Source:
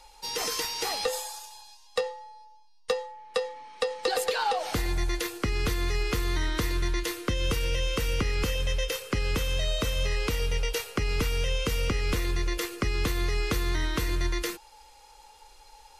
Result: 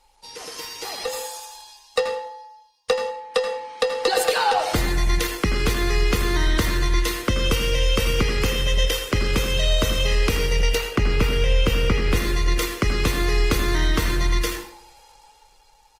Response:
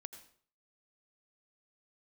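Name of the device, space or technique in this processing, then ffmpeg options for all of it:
speakerphone in a meeting room: -filter_complex "[0:a]asettb=1/sr,asplit=3[a][b][c];[a]atrim=end=10.764[d];[b]atrim=start=10.76:end=12.15,asetpts=PTS-STARTPTS,afade=t=in:d=0.004:c=qsin,afade=t=out:st=1.386:d=0.004:c=qsin,bass=f=250:g=2,treble=f=4k:g=-7[e];[c]atrim=start=12.146[f];[d][e]acrossfade=d=0.004:c1=hsin:c2=qsin[g];[g][f]acrossfade=d=0.004:c1=qsin:c2=hsin[h];[1:a]atrim=start_sample=2205[i];[h][i]afir=irnorm=-1:irlink=0,asplit=2[j][k];[k]adelay=80,highpass=300,lowpass=3.4k,asoftclip=type=hard:threshold=-29.5dB,volume=-8dB[l];[j][l]amix=inputs=2:normalize=0,dynaudnorm=f=230:g=11:m=12dB" -ar 48000 -c:a libopus -b:a 20k

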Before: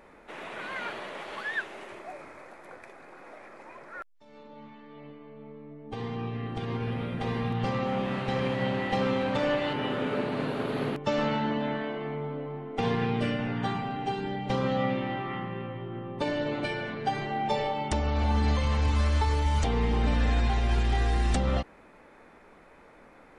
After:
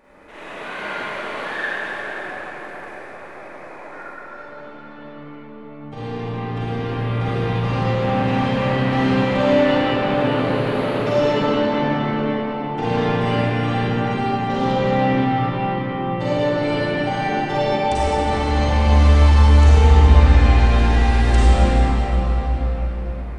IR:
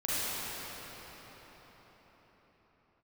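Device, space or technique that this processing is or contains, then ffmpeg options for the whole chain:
cathedral: -filter_complex "[0:a]asettb=1/sr,asplit=3[a][b][c];[a]atrim=end=9.634[d];[b]atrim=start=9.63:end=10.11,asetpts=PTS-STARTPTS,afade=t=in:d=0.004:c=qsin,afade=t=out:st=0.476:d=0.004:c=qsin,lowpass=7.1k[e];[c]atrim=start=10.106[f];[d][e]acrossfade=d=0.004:c1=hsin:c2=qsin[g];[g][f]acrossfade=d=0.004:c1=qsin:c2=hsin[h];[1:a]atrim=start_sample=2205[i];[h][i]afir=irnorm=-1:irlink=0"

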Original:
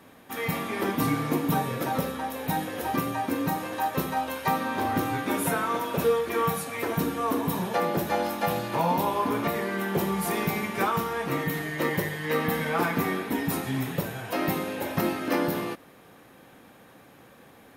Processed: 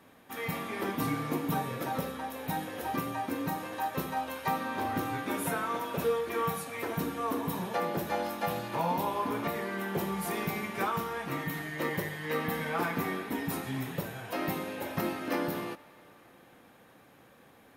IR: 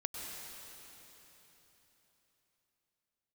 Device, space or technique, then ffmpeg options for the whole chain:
filtered reverb send: -filter_complex "[0:a]asplit=2[a][b];[b]highpass=460,lowpass=4.8k[c];[1:a]atrim=start_sample=2205[d];[c][d]afir=irnorm=-1:irlink=0,volume=-16.5dB[e];[a][e]amix=inputs=2:normalize=0,asettb=1/sr,asplit=3[f][g][h];[f]atrim=end=11.184[i];[g]atrim=start=11.18:end=11.73,asetpts=PTS-STARTPTS,afade=t=in:d=0.004:c=qsin,afade=t=out:st=0.546:d=0.004:c=qsin,equalizer=f=460:w=4.1:g=-5.5[j];[h]atrim=start=11.726[k];[i][j]acrossfade=d=0.004:c1=hsin:c2=qsin[l];[l][k]acrossfade=d=0.004:c1=qsin:c2=hsin,volume=-6dB"

